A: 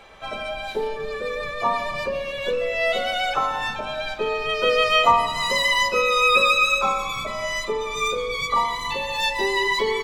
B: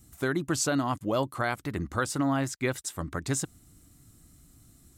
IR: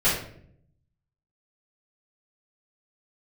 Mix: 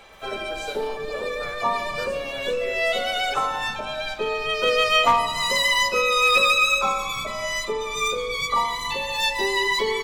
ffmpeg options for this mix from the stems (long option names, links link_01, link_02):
-filter_complex "[0:a]highshelf=frequency=4100:gain=6,volume=-1.5dB[link_01];[1:a]acrusher=bits=7:mix=0:aa=0.000001,highpass=frequency=450:width_type=q:width=4.9,volume=-18.5dB,asplit=2[link_02][link_03];[link_03]volume=-12dB[link_04];[2:a]atrim=start_sample=2205[link_05];[link_04][link_05]afir=irnorm=-1:irlink=0[link_06];[link_01][link_02][link_06]amix=inputs=3:normalize=0,aeval=exprs='clip(val(0),-1,0.211)':channel_layout=same"